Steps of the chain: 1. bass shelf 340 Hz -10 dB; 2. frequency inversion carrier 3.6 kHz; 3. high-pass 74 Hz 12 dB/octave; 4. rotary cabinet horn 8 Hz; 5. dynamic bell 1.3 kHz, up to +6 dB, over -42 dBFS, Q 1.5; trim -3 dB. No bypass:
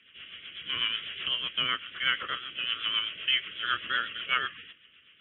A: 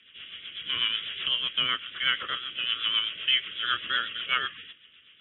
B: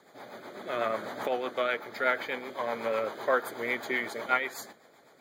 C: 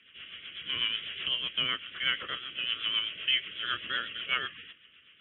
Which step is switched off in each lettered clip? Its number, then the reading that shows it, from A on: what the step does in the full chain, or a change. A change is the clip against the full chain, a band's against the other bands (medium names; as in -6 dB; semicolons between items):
1, 4 kHz band +3.0 dB; 2, 4 kHz band -21.0 dB; 5, 1 kHz band -5.0 dB